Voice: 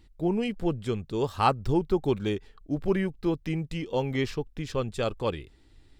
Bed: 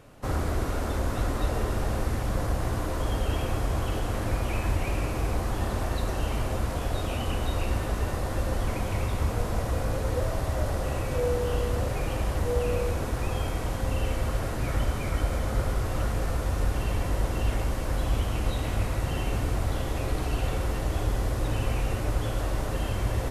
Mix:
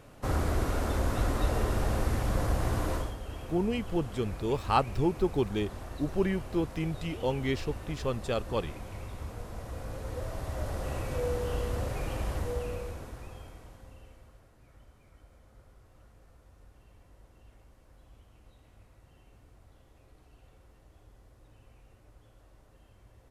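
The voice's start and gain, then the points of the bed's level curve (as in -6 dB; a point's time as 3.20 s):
3.30 s, -2.5 dB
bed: 2.95 s -1 dB
3.16 s -13 dB
9.53 s -13 dB
10.95 s -5 dB
12.35 s -5 dB
14.50 s -30.5 dB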